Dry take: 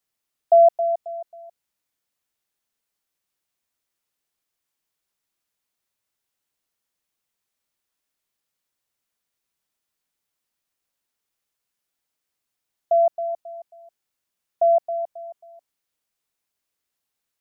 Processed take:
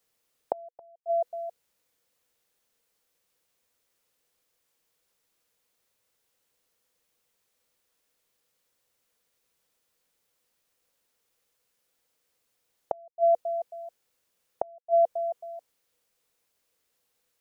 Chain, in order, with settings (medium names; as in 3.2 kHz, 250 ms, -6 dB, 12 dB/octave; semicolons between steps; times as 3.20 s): peaking EQ 490 Hz +11 dB 0.28 oct; inverted gate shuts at -18 dBFS, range -39 dB; trim +5.5 dB